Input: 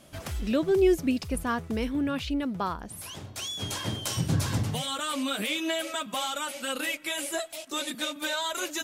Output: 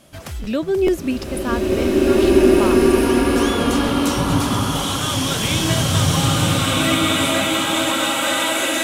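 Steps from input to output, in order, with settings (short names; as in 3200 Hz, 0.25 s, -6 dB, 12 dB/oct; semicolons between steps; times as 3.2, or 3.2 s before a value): crackling interface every 0.43 s, samples 512, repeat, from 0.43; bloom reverb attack 1.96 s, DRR -8 dB; gain +4 dB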